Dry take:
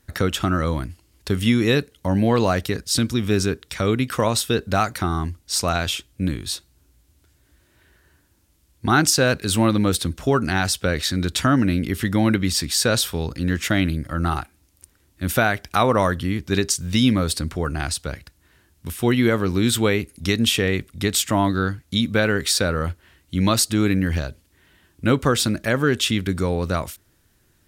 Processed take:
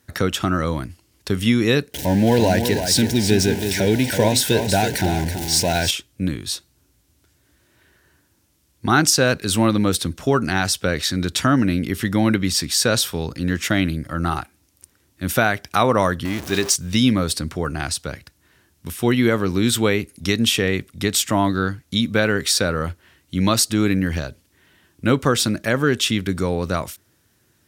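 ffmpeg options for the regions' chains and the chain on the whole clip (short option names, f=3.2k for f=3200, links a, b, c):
-filter_complex "[0:a]asettb=1/sr,asplit=3[a][b][c];[a]atrim=end=1.944[d];[b]atrim=start=1.94:end=5.91,asetpts=PTS-STARTPTS,afade=t=in:d=0.004:c=qsin,afade=t=out:st=3.966:d=0.004:c=qsin,aeval=exprs='val(0)+0.5*0.0668*sgn(val(0))':c=same,asuperstop=centerf=1200:order=8:qfactor=2.5,aecho=1:1:328:0.398,atrim=end_sample=175077[e];[c]atrim=start=5.906[f];[d][e]acrossfade=d=0.004:c1=hsin:c2=qsin[g];[g][f]acrossfade=d=0.004:c1=qsin:c2=hsin,asettb=1/sr,asplit=3[h][i][j];[h]atrim=end=16.254[k];[i]atrim=start=16.25:end=16.76,asetpts=PTS-STARTPTS,afade=t=in:d=0.004:c=qsin,afade=t=out:st=0.506:d=0.004:c=qsin,aeval=exprs='val(0)+0.5*0.0531*sgn(val(0))':c=same,equalizer=f=120:w=0.57:g=-6.5[l];[j]atrim=start=16.756[m];[k][l]acrossfade=d=0.004:c1=hsin:c2=qsin[n];[n][m]acrossfade=d=0.004:c1=qsin:c2=hsin,highpass=89,equalizer=f=5.7k:t=o:w=0.24:g=2.5,volume=1dB"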